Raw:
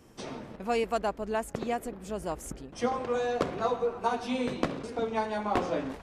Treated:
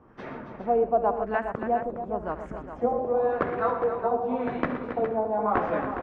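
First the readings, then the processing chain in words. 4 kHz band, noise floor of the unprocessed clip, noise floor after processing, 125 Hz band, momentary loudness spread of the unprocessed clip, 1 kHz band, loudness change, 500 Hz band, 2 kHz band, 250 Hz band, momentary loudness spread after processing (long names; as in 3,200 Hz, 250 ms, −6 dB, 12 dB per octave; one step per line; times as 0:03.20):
below −10 dB, −50 dBFS, −43 dBFS, +1.5 dB, 9 LU, +5.0 dB, +4.5 dB, +5.0 dB, +2.5 dB, +2.0 dB, 10 LU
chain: auto-filter low-pass sine 0.92 Hz 600–1,800 Hz
multi-tap delay 72/119/274/412 ms −15/−12.5/−10/−9.5 dB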